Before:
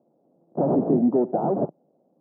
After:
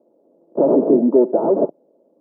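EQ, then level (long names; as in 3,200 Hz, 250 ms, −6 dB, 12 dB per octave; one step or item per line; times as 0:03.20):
Chebyshev high-pass filter 280 Hz, order 2
Butterworth band-reject 750 Hz, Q 6.5
parametric band 480 Hz +9.5 dB 2.3 octaves
0.0 dB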